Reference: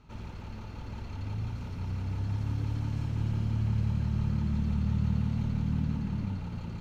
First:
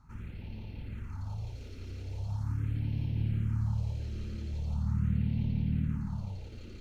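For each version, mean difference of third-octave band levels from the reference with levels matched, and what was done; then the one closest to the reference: 4.5 dB: phase shifter stages 4, 0.41 Hz, lowest notch 150–1300 Hz; trim -1.5 dB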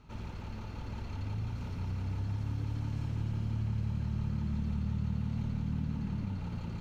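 1.5 dB: compression 2:1, threshold -33 dBFS, peak gain reduction 5.5 dB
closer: second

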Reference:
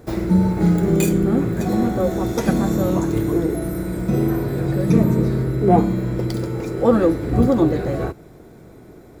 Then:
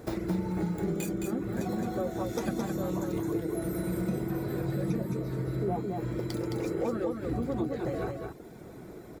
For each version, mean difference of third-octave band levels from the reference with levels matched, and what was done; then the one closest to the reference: 4.5 dB: reverb removal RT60 0.6 s; bass shelf 97 Hz -7 dB; compression 6:1, threshold -29 dBFS, peak gain reduction 18 dB; on a send: delay 216 ms -4.5 dB; on the sum: trim -1 dB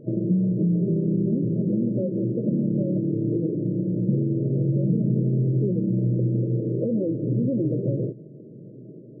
13.0 dB: peak limiter -10.5 dBFS, peak gain reduction 7.5 dB; compression, threshold -21 dBFS, peak gain reduction 7.5 dB; tilt EQ -3.5 dB/octave; FFT band-pass 110–640 Hz; trim -5.5 dB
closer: first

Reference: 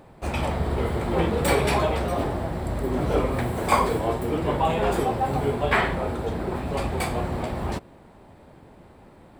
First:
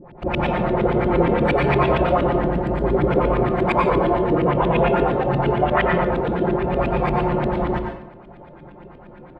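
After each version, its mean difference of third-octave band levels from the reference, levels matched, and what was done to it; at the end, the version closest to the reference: 7.5 dB: comb 5.7 ms, depth 77%; peak limiter -14.5 dBFS, peak gain reduction 10 dB; LFO low-pass saw up 8.6 Hz 220–3200 Hz; plate-style reverb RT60 0.64 s, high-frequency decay 0.75×, pre-delay 80 ms, DRR 3.5 dB; trim +2 dB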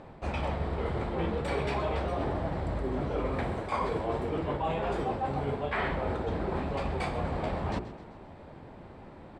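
5.0 dB: hum notches 60/120/180/240/300/360/420 Hz; reverse; compression 6:1, threshold -30 dBFS, peak gain reduction 15 dB; reverse; distance through air 110 m; feedback delay 130 ms, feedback 54%, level -15 dB; trim +2 dB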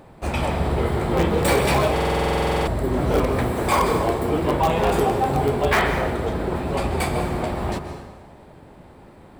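2.0 dB: in parallel at -10 dB: integer overflow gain 13.5 dB; on the sum: plate-style reverb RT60 1.4 s, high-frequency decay 0.8×, pre-delay 115 ms, DRR 7.5 dB; loudness maximiser +7 dB; buffer glitch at 1.93 s, samples 2048, times 15; trim -6.5 dB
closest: third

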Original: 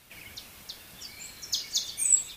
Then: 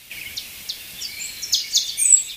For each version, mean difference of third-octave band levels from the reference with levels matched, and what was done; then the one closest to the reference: 4.5 dB: resonant high shelf 1.8 kHz +8 dB, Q 1.5; in parallel at -3 dB: compression, threshold -31 dBFS, peak gain reduction 21 dB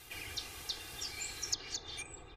11.5 dB: low-pass that closes with the level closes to 1.1 kHz, closed at -25.5 dBFS; comb 2.5 ms, depth 75%; trim +1 dB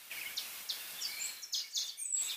7.5 dB: high-pass 1.5 kHz 6 dB/octave; reverse; compression 12:1, threshold -39 dBFS, peak gain reduction 23 dB; reverse; trim +5.5 dB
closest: first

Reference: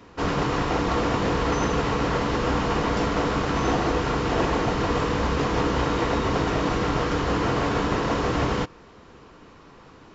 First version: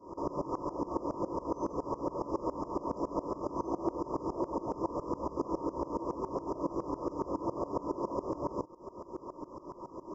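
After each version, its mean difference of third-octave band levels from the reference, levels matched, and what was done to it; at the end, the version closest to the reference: 12.0 dB: compression 16:1, threshold -35 dBFS, peak gain reduction 17.5 dB; brick-wall FIR band-stop 1.3–4.8 kHz; small resonant body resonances 360/560/940 Hz, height 17 dB, ringing for 35 ms; sawtooth tremolo in dB swelling 7.2 Hz, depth 20 dB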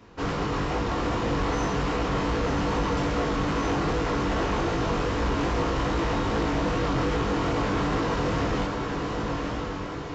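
4.0 dB: on a send: echo that smears into a reverb 1025 ms, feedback 51%, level -4 dB; on the sum: chorus 2.5 Hz, delay 18 ms, depth 3.8 ms; bass shelf 110 Hz +4.5 dB; saturation -18.5 dBFS, distortion -17 dB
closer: second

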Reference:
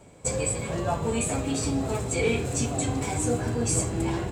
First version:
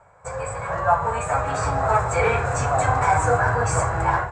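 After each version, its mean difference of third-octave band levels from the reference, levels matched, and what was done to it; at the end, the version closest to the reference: 10.0 dB: FFT filter 100 Hz 0 dB, 150 Hz -4 dB, 240 Hz -18 dB, 350 Hz -13 dB, 520 Hz +2 dB, 910 Hz +12 dB, 1.5 kHz +14 dB, 3.1 kHz -11 dB, 7.7 kHz -8 dB, 11 kHz -22 dB; level rider gain up to 13 dB; trim -4.5 dB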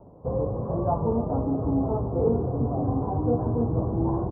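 14.5 dB: steep low-pass 1.1 kHz 48 dB/octave; delay 304 ms -15 dB; trim +2.5 dB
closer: first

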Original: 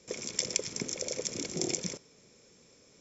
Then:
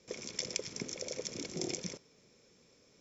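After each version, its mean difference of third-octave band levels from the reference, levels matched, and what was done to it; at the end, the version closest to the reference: 1.5 dB: low-pass 6.5 kHz 24 dB/octave; trim -4 dB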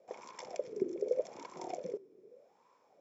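10.0 dB: wah-wah 0.83 Hz 360–1000 Hz, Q 8.7; trim +13 dB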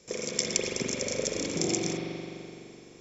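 5.0 dB: spring tank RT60 2.8 s, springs 42 ms, chirp 40 ms, DRR -3.5 dB; trim +2 dB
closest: first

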